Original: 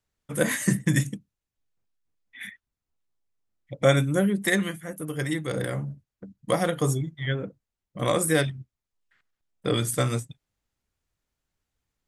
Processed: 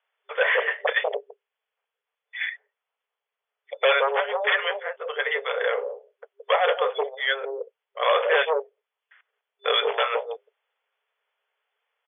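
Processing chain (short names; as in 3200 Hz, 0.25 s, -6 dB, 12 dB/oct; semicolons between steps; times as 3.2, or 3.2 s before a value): bands offset in time highs, lows 0.17 s, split 510 Hz; sine folder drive 11 dB, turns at -9.5 dBFS; FFT band-pass 400–3500 Hz; gain -4 dB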